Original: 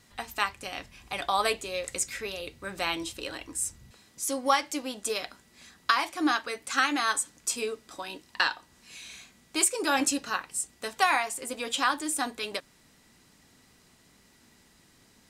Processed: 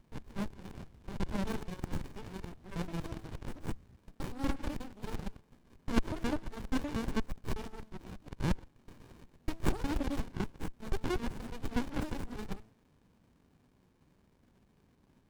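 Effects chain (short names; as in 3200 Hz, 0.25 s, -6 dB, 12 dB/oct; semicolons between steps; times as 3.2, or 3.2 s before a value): local time reversal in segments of 0.12 s; de-hum 109.3 Hz, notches 5; running maximum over 65 samples; gain -3 dB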